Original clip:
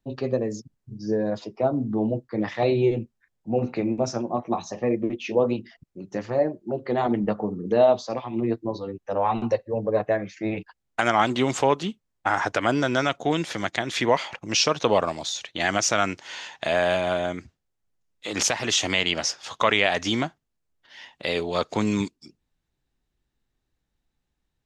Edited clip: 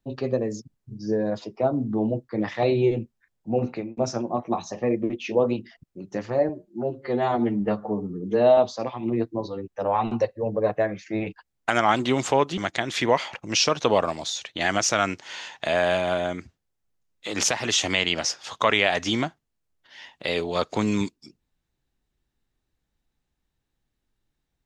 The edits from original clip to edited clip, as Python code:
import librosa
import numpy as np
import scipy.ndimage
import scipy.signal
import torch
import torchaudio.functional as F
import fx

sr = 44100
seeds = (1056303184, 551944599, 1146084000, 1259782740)

y = fx.edit(x, sr, fx.fade_out_span(start_s=3.67, length_s=0.3),
    fx.stretch_span(start_s=6.49, length_s=1.39, factor=1.5),
    fx.cut(start_s=11.88, length_s=1.69), tone=tone)